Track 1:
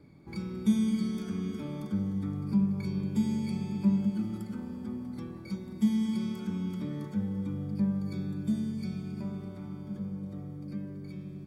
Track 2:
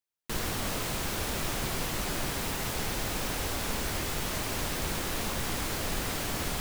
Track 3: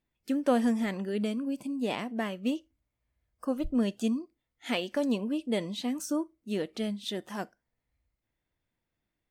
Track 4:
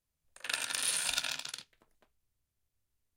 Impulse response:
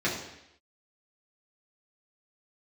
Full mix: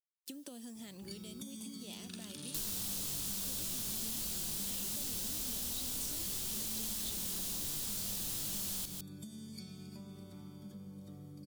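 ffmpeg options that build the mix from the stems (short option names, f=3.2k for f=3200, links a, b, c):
-filter_complex "[0:a]acompressor=threshold=-32dB:ratio=6,adelay=750,volume=-8dB[a];[1:a]flanger=delay=20:depth=6.9:speed=2.9,adelay=2250,volume=-5dB,asplit=2[b][c];[c]volume=-10dB[d];[2:a]acompressor=threshold=-33dB:ratio=6,acrusher=bits=10:mix=0:aa=0.000001,volume=-9.5dB[e];[3:a]lowpass=f=1.3k:p=1,adelay=1600,volume=-13.5dB[f];[d]aecho=0:1:154:1[g];[a][b][e][f][g]amix=inputs=5:normalize=0,acrossover=split=390|3100[h][i][j];[h]acompressor=threshold=-47dB:ratio=4[k];[i]acompressor=threshold=-58dB:ratio=4[l];[j]acompressor=threshold=-52dB:ratio=4[m];[k][l][m]amix=inputs=3:normalize=0,aexciter=amount=4.3:drive=3.8:freq=3k"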